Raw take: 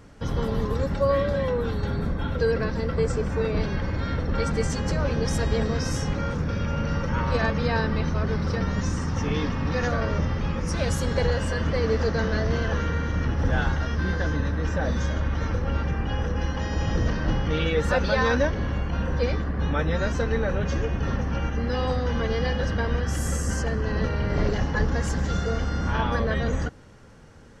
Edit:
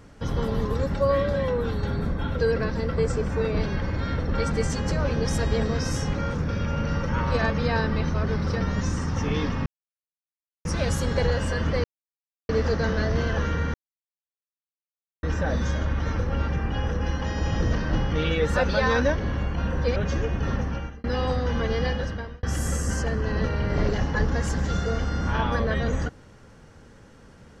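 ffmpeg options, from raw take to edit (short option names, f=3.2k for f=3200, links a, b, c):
-filter_complex "[0:a]asplit=9[a][b][c][d][e][f][g][h][i];[a]atrim=end=9.66,asetpts=PTS-STARTPTS,afade=t=out:st=9.656:d=0.004:c=hsin[j];[b]atrim=start=9.66:end=10.65,asetpts=PTS-STARTPTS,volume=0[k];[c]atrim=start=10.65:end=11.84,asetpts=PTS-STARTPTS,afade=t=in:d=0.004:c=hsin,afade=t=out:st=1.186:d=0.004:c=hsin,apad=pad_dur=0.65[l];[d]atrim=start=11.84:end=13.09,asetpts=PTS-STARTPTS,afade=t=in:d=0.004:c=hsin,afade=t=out:st=1.246:d=0.004:c=hsin[m];[e]atrim=start=13.09:end=14.58,asetpts=PTS-STARTPTS,volume=0[n];[f]atrim=start=14.58:end=19.312,asetpts=PTS-STARTPTS,afade=t=in:d=0.004:c=hsin[o];[g]atrim=start=20.558:end=21.64,asetpts=PTS-STARTPTS,afade=t=out:st=0.672:d=0.41[p];[h]atrim=start=21.64:end=23.03,asetpts=PTS-STARTPTS,afade=t=in:d=0.004:c=hsin,afade=t=out:st=0.83:d=0.56[q];[i]atrim=start=23.03,asetpts=PTS-STARTPTS,afade=t=in:d=0.004:c=hsin[r];[j][k][l][m][n][o]concat=n=6:v=0:a=1[s];[p][q][r]concat=n=3:v=0:a=1[t];[s][t]acrossfade=d=0.004:c1=hsin:c2=hsin"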